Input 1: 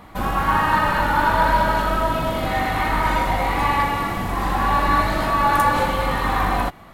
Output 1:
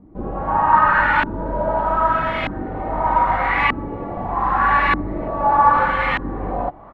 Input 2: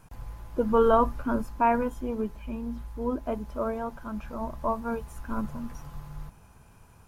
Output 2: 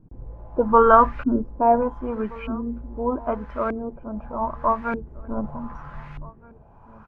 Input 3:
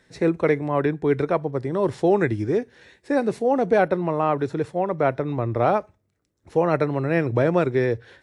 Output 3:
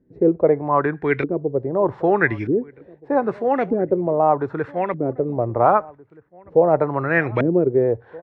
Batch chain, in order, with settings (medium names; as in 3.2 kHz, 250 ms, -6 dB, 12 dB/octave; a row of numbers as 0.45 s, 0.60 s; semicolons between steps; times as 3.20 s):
tilt shelf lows -4.5 dB, about 1.3 kHz; LFO low-pass saw up 0.81 Hz 280–2500 Hz; echo from a far wall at 270 m, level -22 dB; peak normalisation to -2 dBFS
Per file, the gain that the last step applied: +0.5 dB, +6.5 dB, +3.0 dB